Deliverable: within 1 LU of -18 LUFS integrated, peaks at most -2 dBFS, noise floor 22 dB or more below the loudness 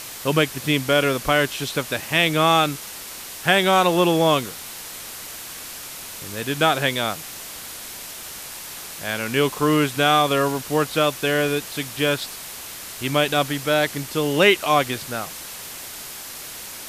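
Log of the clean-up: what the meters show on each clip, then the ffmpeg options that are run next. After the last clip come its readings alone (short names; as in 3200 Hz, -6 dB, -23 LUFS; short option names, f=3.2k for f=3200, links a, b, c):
noise floor -36 dBFS; noise floor target -43 dBFS; loudness -20.5 LUFS; peak -1.0 dBFS; loudness target -18.0 LUFS
-> -af "afftdn=nr=7:nf=-36"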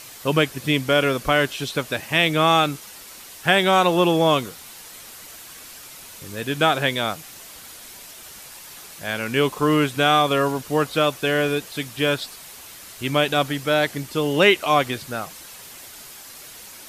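noise floor -42 dBFS; noise floor target -43 dBFS
-> -af "afftdn=nr=6:nf=-42"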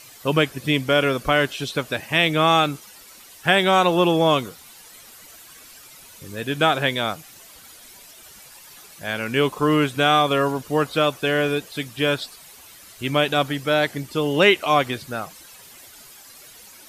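noise floor -46 dBFS; loudness -20.5 LUFS; peak -1.0 dBFS; loudness target -18.0 LUFS
-> -af "volume=2.5dB,alimiter=limit=-2dB:level=0:latency=1"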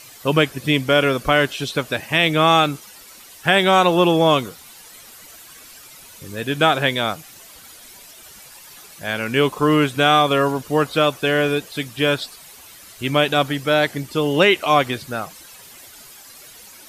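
loudness -18.5 LUFS; peak -2.0 dBFS; noise floor -43 dBFS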